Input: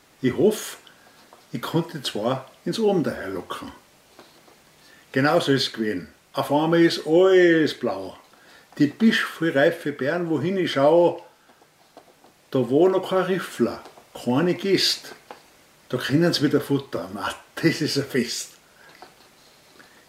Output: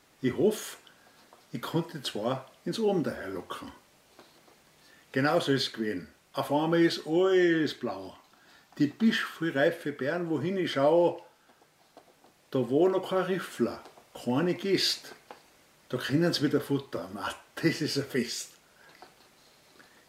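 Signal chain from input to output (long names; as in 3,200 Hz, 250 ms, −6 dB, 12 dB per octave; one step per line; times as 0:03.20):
0:06.93–0:09.60: thirty-one-band graphic EQ 500 Hz −9 dB, 2,000 Hz −3 dB, 10,000 Hz −5 dB
level −6.5 dB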